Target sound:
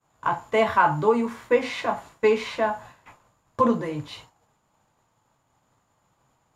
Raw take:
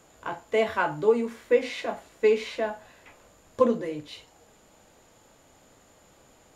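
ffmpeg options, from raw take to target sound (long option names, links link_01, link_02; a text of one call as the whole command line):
ffmpeg -i in.wav -af "agate=range=-33dB:threshold=-46dB:ratio=3:detection=peak,equalizer=frequency=125:width_type=o:width=1:gain=11,equalizer=frequency=500:width_type=o:width=1:gain=-4,equalizer=frequency=1000:width_type=o:width=1:gain=11,alimiter=level_in=9dB:limit=-1dB:release=50:level=0:latency=1,volume=-7dB" out.wav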